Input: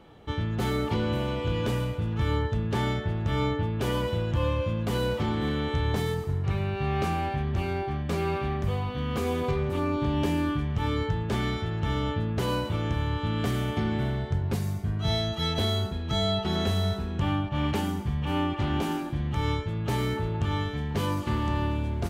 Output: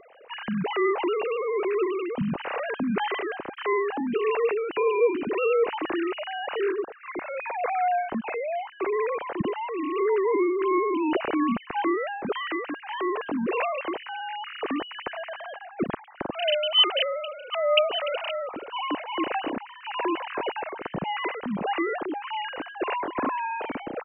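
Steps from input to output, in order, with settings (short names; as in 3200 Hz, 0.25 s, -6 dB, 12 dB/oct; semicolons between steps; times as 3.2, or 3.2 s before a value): sine-wave speech; speed mistake 48 kHz file played as 44.1 kHz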